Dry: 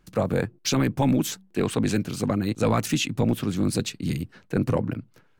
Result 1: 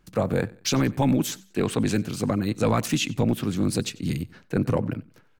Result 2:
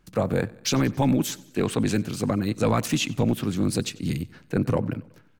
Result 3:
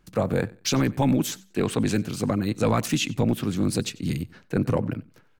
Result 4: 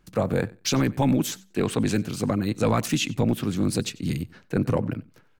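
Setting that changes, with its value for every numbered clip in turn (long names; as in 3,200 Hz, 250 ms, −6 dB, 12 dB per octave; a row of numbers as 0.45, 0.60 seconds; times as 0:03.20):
repeating echo, feedback: 34, 56, 23, 15%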